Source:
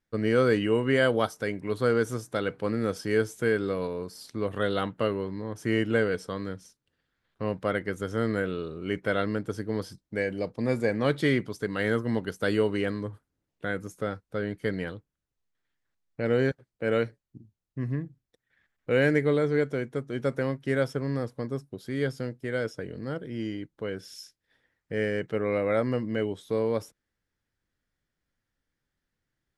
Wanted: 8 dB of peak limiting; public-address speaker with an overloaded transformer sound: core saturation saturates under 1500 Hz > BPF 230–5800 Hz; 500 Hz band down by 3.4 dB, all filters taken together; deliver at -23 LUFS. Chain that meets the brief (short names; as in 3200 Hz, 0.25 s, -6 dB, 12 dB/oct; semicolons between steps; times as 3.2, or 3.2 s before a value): bell 500 Hz -3.5 dB; limiter -19.5 dBFS; core saturation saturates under 1500 Hz; BPF 230–5800 Hz; gain +16.5 dB